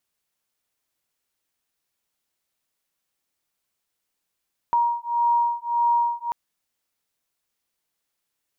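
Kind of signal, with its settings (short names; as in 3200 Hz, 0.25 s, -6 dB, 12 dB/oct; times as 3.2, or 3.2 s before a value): beating tones 945 Hz, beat 1.7 Hz, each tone -22 dBFS 1.59 s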